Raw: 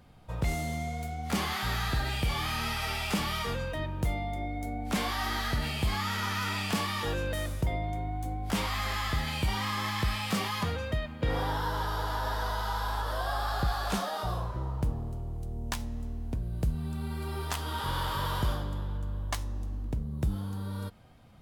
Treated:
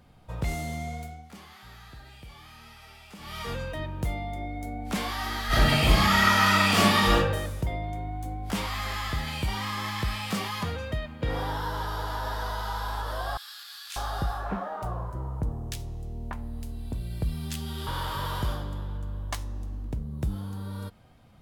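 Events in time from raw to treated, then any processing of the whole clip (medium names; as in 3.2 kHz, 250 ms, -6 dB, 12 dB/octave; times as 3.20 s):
0.94–3.54 s: dip -17 dB, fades 0.36 s
5.47–7.15 s: reverb throw, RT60 0.83 s, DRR -11 dB
13.37–17.87 s: bands offset in time highs, lows 590 ms, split 2 kHz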